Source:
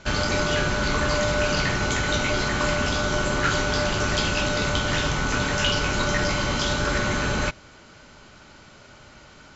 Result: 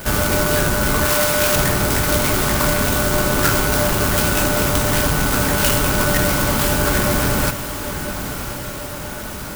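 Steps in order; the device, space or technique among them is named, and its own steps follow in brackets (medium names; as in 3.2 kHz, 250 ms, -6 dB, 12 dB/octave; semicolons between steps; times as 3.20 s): 1.05–1.56 s: tilt EQ +2.5 dB/octave; early CD player with a faulty converter (jump at every zero crossing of -35 dBFS; sampling jitter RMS 0.082 ms); echo that smears into a reverb 1065 ms, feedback 57%, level -10.5 dB; trim +5 dB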